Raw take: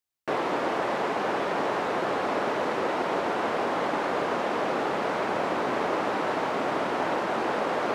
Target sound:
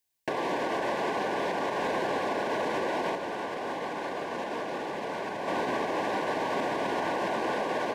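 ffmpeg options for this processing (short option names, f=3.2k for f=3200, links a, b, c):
-filter_complex "[0:a]asuperstop=centerf=1300:order=20:qfactor=5.1,highshelf=f=6.2k:g=4.5,asplit=2[a][b];[b]adelay=280,highpass=300,lowpass=3.4k,asoftclip=type=hard:threshold=-24dB,volume=-9dB[c];[a][c]amix=inputs=2:normalize=0,alimiter=level_in=1.5dB:limit=-24dB:level=0:latency=1:release=148,volume=-1.5dB,asettb=1/sr,asplit=3[d][e][f];[d]atrim=end=3.154[g];[e]atrim=start=3.15:end=5.48,asetpts=PTS-STARTPTS,afade=t=in:d=0.004:c=qsin,afade=t=out:st=2.326:d=0.004:c=qsin,flanger=delay=0.3:depth=6.6:regen=-79:speed=1.6:shape=sinusoidal[h];[f]atrim=start=5.476[i];[g][h]acrossfade=d=0.004:c1=hsin:c2=qsin[j];[j][i]acrossfade=d=0.004:c1=qsin:c2=hsin,volume=4.5dB"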